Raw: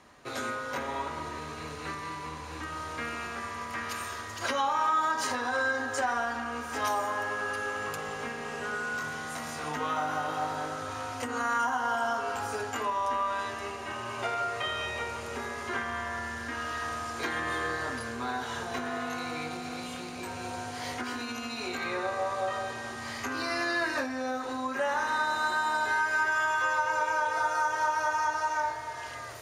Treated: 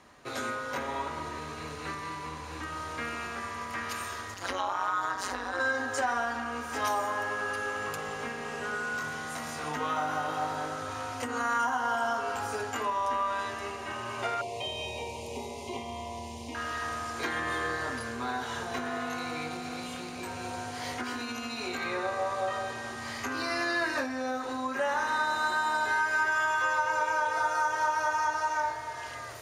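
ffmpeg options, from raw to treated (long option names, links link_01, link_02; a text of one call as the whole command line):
ffmpeg -i in.wav -filter_complex "[0:a]asettb=1/sr,asplit=3[link_01][link_02][link_03];[link_01]atrim=end=4.344[link_04];[link_02]atrim=start=4.34:end=5.6,asetpts=PTS-STARTPTS,afade=type=in:duration=0.004:curve=qsin,afade=type=out:start_time=1.256:duration=0.004:curve=qsin,tremolo=f=190:d=0.919[link_05];[link_03]atrim=start=5.596[link_06];[link_04][link_05]acrossfade=duration=0.004:curve1=hsin:curve2=qsin[link_07];[link_07][link_06]acrossfade=duration=0.004:curve1=qsin:curve2=hsin,asettb=1/sr,asplit=3[link_08][link_09][link_10];[link_08]atrim=end=14.414[link_11];[link_09]atrim=start=14.41:end=16.55,asetpts=PTS-STARTPTS,afade=type=in:duration=0.004:curve=qsin,afade=type=out:start_time=2.136:duration=0.004:curve=qsin,asuperstop=centerf=1500:order=8:qfactor=1.2[link_12];[link_10]atrim=start=16.546[link_13];[link_11][link_12]acrossfade=duration=0.004:curve1=hsin:curve2=qsin[link_14];[link_14][link_13]acrossfade=duration=0.004:curve1=qsin:curve2=hsin" out.wav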